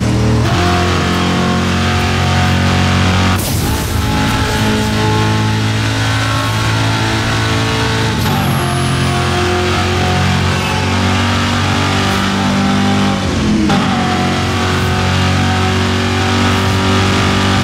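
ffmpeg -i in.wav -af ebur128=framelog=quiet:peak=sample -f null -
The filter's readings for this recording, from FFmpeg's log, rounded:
Integrated loudness:
  I:         -13.1 LUFS
  Threshold: -23.1 LUFS
Loudness range:
  LRA:         1.1 LU
  Threshold: -33.2 LUFS
  LRA low:   -13.7 LUFS
  LRA high:  -12.6 LUFS
Sample peak:
  Peak:       -3.6 dBFS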